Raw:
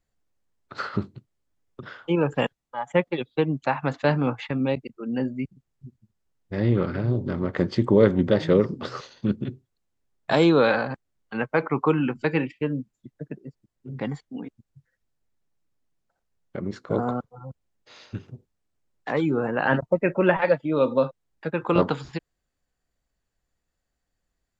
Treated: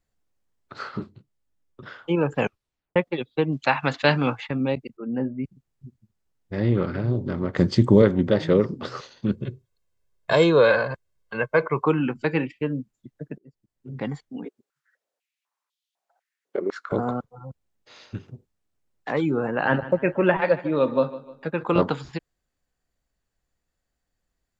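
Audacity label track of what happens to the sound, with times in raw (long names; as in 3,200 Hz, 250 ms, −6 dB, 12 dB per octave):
0.780000	1.820000	micro pitch shift up and down each way 49 cents
2.390000	2.390000	tape stop 0.57 s
3.520000	4.380000	parametric band 3,500 Hz +11.5 dB 2.3 octaves
4.970000	5.440000	low-pass filter 1,500 Hz
7.550000	8.020000	bass and treble bass +7 dB, treble +10 dB
9.320000	11.840000	comb filter 1.9 ms
13.380000	13.950000	fade in, from −15.5 dB
14.450000	16.920000	high-pass on a step sequencer 4 Hz 400–3,400 Hz
19.430000	21.670000	repeating echo 151 ms, feedback 42%, level −16 dB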